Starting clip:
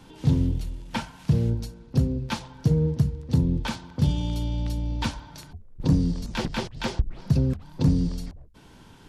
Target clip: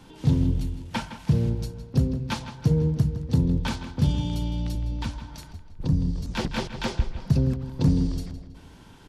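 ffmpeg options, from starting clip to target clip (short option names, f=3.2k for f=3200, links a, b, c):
-filter_complex "[0:a]asettb=1/sr,asplit=3[a][b][c];[a]atrim=end=4.754[d];[b]atrim=start=4.75:end=6.36,asetpts=PTS-STARTPTS,afade=t=in:d=0.004:c=qsin,afade=t=out:st=1.606:d=0.004:c=qsin,acrossover=split=170[e][f];[f]acompressor=threshold=-39dB:ratio=2[g];[e][g]amix=inputs=2:normalize=0[h];[c]atrim=start=6.356[i];[d][h]acrossfade=d=0.004:c1=hsin:c2=qsin[j];[j][i]acrossfade=d=0.004:c1=qsin:c2=hsin,asplit=2[k][l];[l]adelay=161,lowpass=f=4.8k:p=1,volume=-11dB,asplit=2[m][n];[n]adelay=161,lowpass=f=4.8k:p=1,volume=0.47,asplit=2[o][p];[p]adelay=161,lowpass=f=4.8k:p=1,volume=0.47,asplit=2[q][r];[r]adelay=161,lowpass=f=4.8k:p=1,volume=0.47,asplit=2[s][t];[t]adelay=161,lowpass=f=4.8k:p=1,volume=0.47[u];[k][m][o][q][s][u]amix=inputs=6:normalize=0"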